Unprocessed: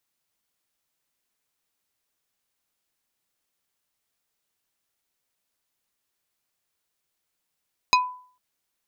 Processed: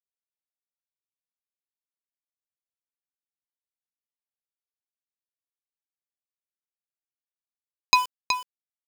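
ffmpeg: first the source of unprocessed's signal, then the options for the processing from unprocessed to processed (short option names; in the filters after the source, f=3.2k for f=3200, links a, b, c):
-f lavfi -i "aevalsrc='0.224*pow(10,-3*t/0.48)*sin(2*PI*1000*t)+0.178*pow(10,-3*t/0.16)*sin(2*PI*2500*t)+0.141*pow(10,-3*t/0.091)*sin(2*PI*4000*t)+0.112*pow(10,-3*t/0.07)*sin(2*PI*5000*t)+0.0891*pow(10,-3*t/0.051)*sin(2*PI*6500*t)':d=0.45:s=44100"
-af "highshelf=f=2.5k:g=6,aeval=exprs='val(0)*gte(abs(val(0)),0.0398)':c=same,aecho=1:1:372:0.422"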